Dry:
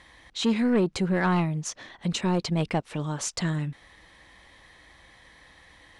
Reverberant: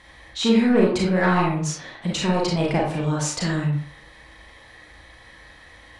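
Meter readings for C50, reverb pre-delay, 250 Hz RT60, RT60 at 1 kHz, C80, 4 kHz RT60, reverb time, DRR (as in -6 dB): 2.0 dB, 31 ms, 0.55 s, 0.55 s, 7.0 dB, 0.35 s, 0.55 s, -3.5 dB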